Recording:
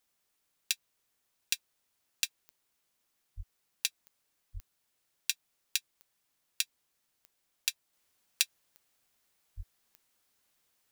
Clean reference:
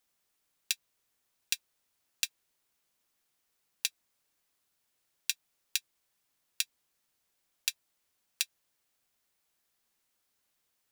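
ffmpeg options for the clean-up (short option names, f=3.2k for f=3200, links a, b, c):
-filter_complex "[0:a]adeclick=t=4,asplit=3[a][b][c];[a]afade=t=out:st=3.36:d=0.02[d];[b]highpass=f=140:w=0.5412,highpass=f=140:w=1.3066,afade=t=in:st=3.36:d=0.02,afade=t=out:st=3.48:d=0.02[e];[c]afade=t=in:st=3.48:d=0.02[f];[d][e][f]amix=inputs=3:normalize=0,asplit=3[g][h][i];[g]afade=t=out:st=4.53:d=0.02[j];[h]highpass=f=140:w=0.5412,highpass=f=140:w=1.3066,afade=t=in:st=4.53:d=0.02,afade=t=out:st=4.65:d=0.02[k];[i]afade=t=in:st=4.65:d=0.02[l];[j][k][l]amix=inputs=3:normalize=0,asplit=3[m][n][o];[m]afade=t=out:st=9.56:d=0.02[p];[n]highpass=f=140:w=0.5412,highpass=f=140:w=1.3066,afade=t=in:st=9.56:d=0.02,afade=t=out:st=9.68:d=0.02[q];[o]afade=t=in:st=9.68:d=0.02[r];[p][q][r]amix=inputs=3:normalize=0,asetnsamples=n=441:p=0,asendcmd='7.93 volume volume -3.5dB',volume=0dB"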